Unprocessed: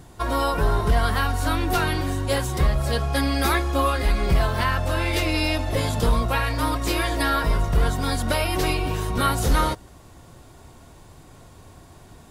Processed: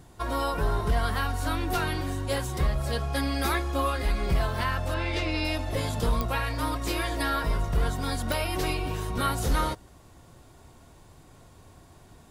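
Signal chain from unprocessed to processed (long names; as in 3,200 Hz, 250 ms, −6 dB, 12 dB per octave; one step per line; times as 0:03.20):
0:04.94–0:05.45: low-pass filter 5,500 Hz 12 dB per octave
digital clicks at 0:06.21/0:08.32, −8 dBFS
level −5.5 dB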